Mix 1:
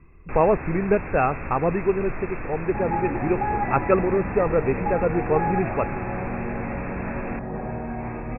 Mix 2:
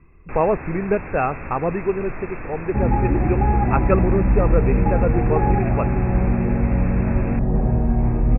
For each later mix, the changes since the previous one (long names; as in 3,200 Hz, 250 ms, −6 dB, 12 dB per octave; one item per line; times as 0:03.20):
second sound: add spectral tilt −4.5 dB per octave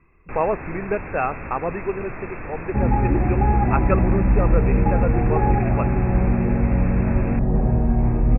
speech: add low-shelf EQ 390 Hz −8.5 dB